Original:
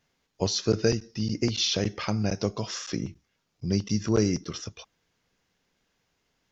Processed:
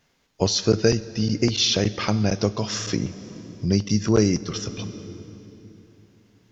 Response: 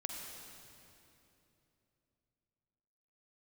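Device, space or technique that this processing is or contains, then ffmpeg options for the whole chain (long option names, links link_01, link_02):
ducked reverb: -filter_complex "[0:a]asplit=3[link_01][link_02][link_03];[1:a]atrim=start_sample=2205[link_04];[link_02][link_04]afir=irnorm=-1:irlink=0[link_05];[link_03]apad=whole_len=287144[link_06];[link_05][link_06]sidechaincompress=threshold=-29dB:ratio=8:attack=20:release=649,volume=-4.5dB[link_07];[link_01][link_07]amix=inputs=2:normalize=0,volume=4dB"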